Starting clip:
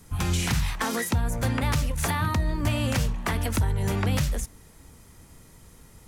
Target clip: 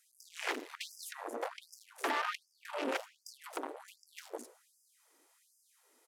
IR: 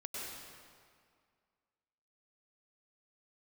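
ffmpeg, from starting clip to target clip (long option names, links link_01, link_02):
-filter_complex "[0:a]asplit=3[link_01][link_02][link_03];[link_02]asetrate=29433,aresample=44100,atempo=1.49831,volume=-16dB[link_04];[link_03]asetrate=33038,aresample=44100,atempo=1.33484,volume=-11dB[link_05];[link_01][link_04][link_05]amix=inputs=3:normalize=0,afwtdn=0.0316,asoftclip=type=tanh:threshold=-31dB,asplit=2[link_06][link_07];[1:a]atrim=start_sample=2205,asetrate=57330,aresample=44100[link_08];[link_07][link_08]afir=irnorm=-1:irlink=0,volume=-16dB[link_09];[link_06][link_09]amix=inputs=2:normalize=0,afftfilt=real='re*gte(b*sr/1024,250*pow(4900/250,0.5+0.5*sin(2*PI*1.3*pts/sr)))':imag='im*gte(b*sr/1024,250*pow(4900/250,0.5+0.5*sin(2*PI*1.3*pts/sr)))':win_size=1024:overlap=0.75,volume=3dB"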